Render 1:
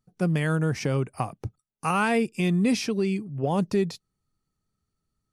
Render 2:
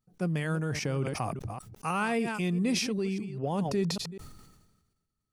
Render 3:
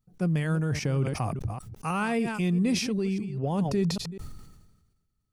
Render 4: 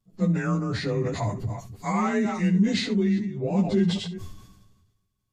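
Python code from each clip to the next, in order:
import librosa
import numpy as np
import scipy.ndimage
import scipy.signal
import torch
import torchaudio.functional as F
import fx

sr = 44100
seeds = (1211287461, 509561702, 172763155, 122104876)

y1 = fx.reverse_delay(x, sr, ms=199, wet_db=-14)
y1 = fx.sustainer(y1, sr, db_per_s=47.0)
y1 = y1 * librosa.db_to_amplitude(-6.0)
y2 = fx.low_shelf(y1, sr, hz=150.0, db=10.0)
y3 = fx.partial_stretch(y2, sr, pct=91)
y3 = fx.room_early_taps(y3, sr, ms=(10, 69), db=(-4.0, -14.5))
y3 = y3 * librosa.db_to_amplitude(3.0)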